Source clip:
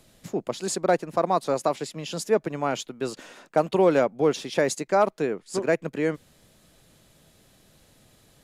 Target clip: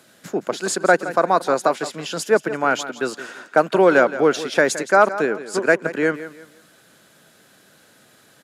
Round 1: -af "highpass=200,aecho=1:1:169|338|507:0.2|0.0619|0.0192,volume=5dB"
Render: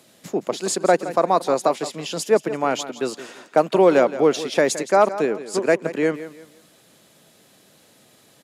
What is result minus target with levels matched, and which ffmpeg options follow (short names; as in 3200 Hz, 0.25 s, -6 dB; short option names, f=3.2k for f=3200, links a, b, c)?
2000 Hz band -7.0 dB
-af "highpass=200,equalizer=f=1.5k:t=o:w=0.4:g=11.5,aecho=1:1:169|338|507:0.2|0.0619|0.0192,volume=5dB"